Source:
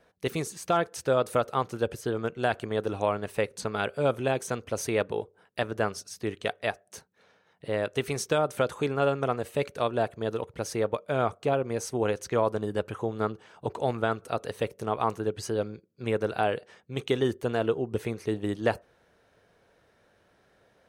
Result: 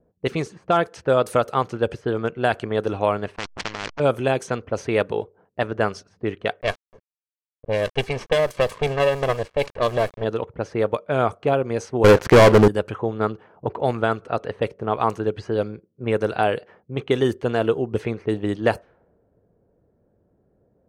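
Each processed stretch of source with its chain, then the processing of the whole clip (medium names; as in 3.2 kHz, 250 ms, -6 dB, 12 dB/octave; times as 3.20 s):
3.36–4.00 s: hysteresis with a dead band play -29.5 dBFS + resonant low-pass 5.8 kHz, resonance Q 13 + spectrum-flattening compressor 10:1
6.61–10.24 s: comb filter that takes the minimum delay 1.8 ms + band-stop 1.4 kHz, Q 6.3 + small samples zeroed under -43.5 dBFS
12.04–12.68 s: low-pass 2 kHz + waveshaping leveller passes 5
whole clip: level-controlled noise filter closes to 360 Hz, open at -23 dBFS; band-stop 3.7 kHz, Q 23; trim +6 dB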